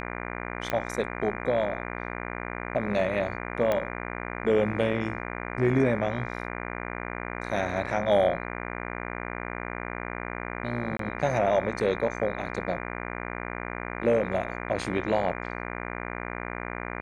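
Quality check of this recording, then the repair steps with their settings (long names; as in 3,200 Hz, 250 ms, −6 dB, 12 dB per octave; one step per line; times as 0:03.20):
mains buzz 60 Hz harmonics 40 −35 dBFS
0:00.70: click −14 dBFS
0:03.72: click −14 dBFS
0:10.97–0:10.99: drop-out 23 ms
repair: click removal
hum removal 60 Hz, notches 40
repair the gap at 0:10.97, 23 ms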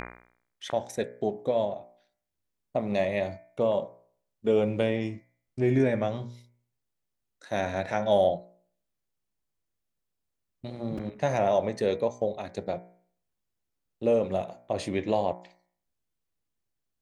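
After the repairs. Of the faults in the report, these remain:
0:03.72: click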